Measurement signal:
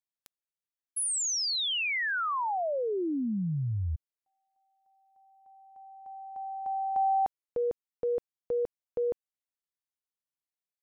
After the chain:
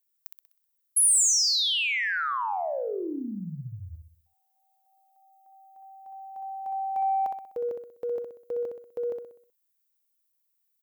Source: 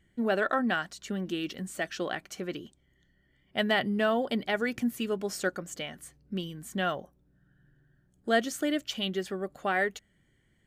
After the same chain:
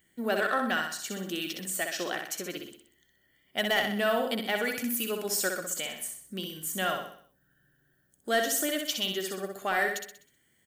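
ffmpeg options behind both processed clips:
-filter_complex "[0:a]aemphasis=mode=production:type=bsi,asoftclip=type=tanh:threshold=0.15,asplit=2[s0][s1];[s1]aecho=0:1:63|126|189|252|315|378:0.562|0.259|0.119|0.0547|0.0252|0.0116[s2];[s0][s2]amix=inputs=2:normalize=0"

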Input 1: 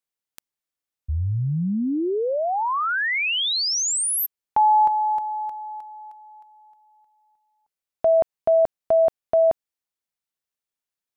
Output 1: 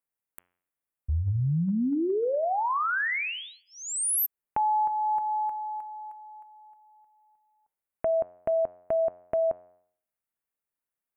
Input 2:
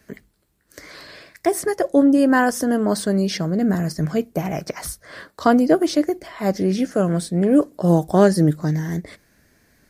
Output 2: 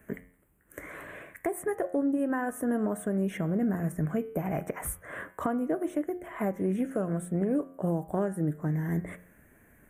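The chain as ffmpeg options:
-af "bandreject=f=89.25:t=h:w=4,bandreject=f=178.5:t=h:w=4,bandreject=f=267.75:t=h:w=4,bandreject=f=357:t=h:w=4,bandreject=f=446.25:t=h:w=4,bandreject=f=535.5:t=h:w=4,bandreject=f=624.75:t=h:w=4,bandreject=f=714:t=h:w=4,bandreject=f=803.25:t=h:w=4,bandreject=f=892.5:t=h:w=4,bandreject=f=981.75:t=h:w=4,bandreject=f=1071:t=h:w=4,bandreject=f=1160.25:t=h:w=4,bandreject=f=1249.5:t=h:w=4,bandreject=f=1338.75:t=h:w=4,bandreject=f=1428:t=h:w=4,bandreject=f=1517.25:t=h:w=4,bandreject=f=1606.5:t=h:w=4,bandreject=f=1695.75:t=h:w=4,bandreject=f=1785:t=h:w=4,bandreject=f=1874.25:t=h:w=4,bandreject=f=1963.5:t=h:w=4,bandreject=f=2052.75:t=h:w=4,bandreject=f=2142:t=h:w=4,bandreject=f=2231.25:t=h:w=4,bandreject=f=2320.5:t=h:w=4,bandreject=f=2409.75:t=h:w=4,bandreject=f=2499:t=h:w=4,bandreject=f=2588.25:t=h:w=4,bandreject=f=2677.5:t=h:w=4,bandreject=f=2766.75:t=h:w=4,bandreject=f=2856:t=h:w=4,bandreject=f=2945.25:t=h:w=4,bandreject=f=3034.5:t=h:w=4,bandreject=f=3123.75:t=h:w=4,bandreject=f=3213:t=h:w=4,bandreject=f=3302.25:t=h:w=4,bandreject=f=3391.5:t=h:w=4,acompressor=threshold=0.0794:ratio=10:attack=1.2:release=925:knee=1:detection=peak,asuperstop=centerf=4700:order=4:qfactor=0.71"

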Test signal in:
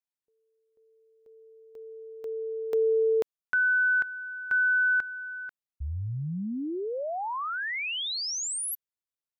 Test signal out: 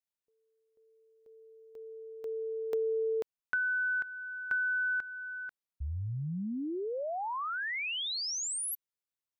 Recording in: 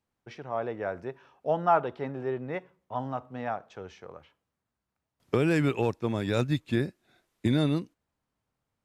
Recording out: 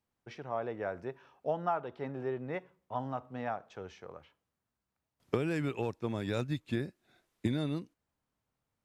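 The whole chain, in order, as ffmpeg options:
-af "acompressor=threshold=0.0447:ratio=6:attack=41:release=858:knee=6:detection=peak,volume=0.75"

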